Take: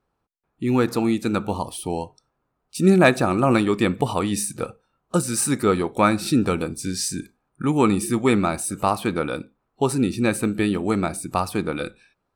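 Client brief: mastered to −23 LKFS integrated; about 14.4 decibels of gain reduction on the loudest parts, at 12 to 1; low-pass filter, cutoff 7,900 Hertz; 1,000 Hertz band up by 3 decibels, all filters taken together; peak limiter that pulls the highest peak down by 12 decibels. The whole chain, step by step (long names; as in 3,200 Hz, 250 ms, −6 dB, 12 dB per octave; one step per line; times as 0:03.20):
low-pass filter 7,900 Hz
parametric band 1,000 Hz +4 dB
downward compressor 12 to 1, threshold −24 dBFS
level +11 dB
brickwall limiter −12.5 dBFS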